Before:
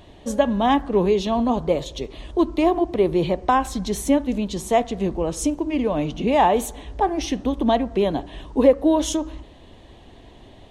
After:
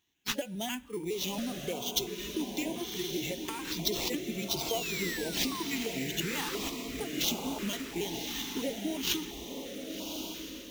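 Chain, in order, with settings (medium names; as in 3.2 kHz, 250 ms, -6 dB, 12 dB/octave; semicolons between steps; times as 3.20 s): pitch shift switched off and on -2 st, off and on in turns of 138 ms; gate -36 dBFS, range -17 dB; spectral noise reduction 15 dB; compression 10:1, threshold -31 dBFS, peak gain reduction 21.5 dB; frequency weighting D; painted sound fall, 4.68–5.63 s, 970–3300 Hz -38 dBFS; sample-rate reducer 9.6 kHz, jitter 0%; echo that smears into a reverb 1122 ms, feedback 50%, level -5 dB; on a send at -24 dB: reverberation RT60 2.1 s, pre-delay 69 ms; on the sum: step-sequenced notch 2.9 Hz 570–1800 Hz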